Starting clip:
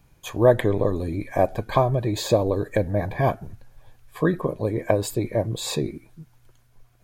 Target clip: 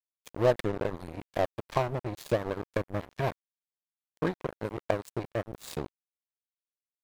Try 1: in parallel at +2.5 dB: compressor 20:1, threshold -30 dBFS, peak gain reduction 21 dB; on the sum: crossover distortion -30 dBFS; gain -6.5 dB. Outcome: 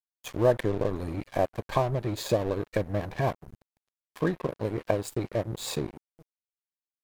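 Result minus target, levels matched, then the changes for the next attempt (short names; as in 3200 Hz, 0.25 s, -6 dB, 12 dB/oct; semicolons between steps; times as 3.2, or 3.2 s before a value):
crossover distortion: distortion -8 dB
change: crossover distortion -21 dBFS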